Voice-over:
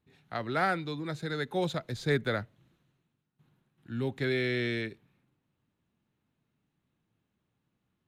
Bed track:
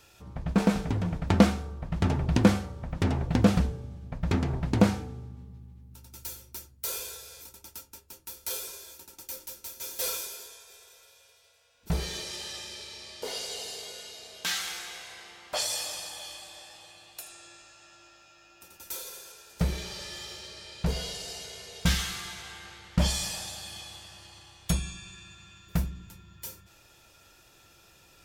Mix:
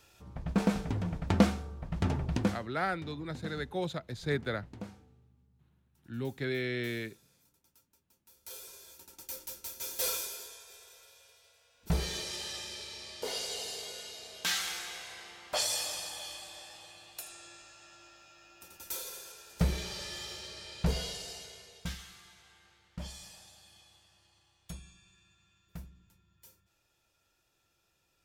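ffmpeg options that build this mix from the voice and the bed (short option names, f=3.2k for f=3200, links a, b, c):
-filter_complex "[0:a]adelay=2200,volume=-4dB[a];[1:a]volume=17dB,afade=t=out:st=2.15:d=0.6:silence=0.125893,afade=t=in:st=8.25:d=1.28:silence=0.0841395,afade=t=out:st=20.88:d=1.09:silence=0.149624[b];[a][b]amix=inputs=2:normalize=0"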